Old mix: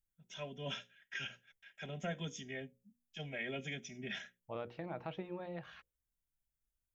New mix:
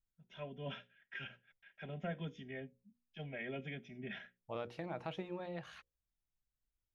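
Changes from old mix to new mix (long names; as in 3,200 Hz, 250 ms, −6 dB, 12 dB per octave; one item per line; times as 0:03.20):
first voice: add high-frequency loss of the air 370 metres
second voice: remove high-frequency loss of the air 170 metres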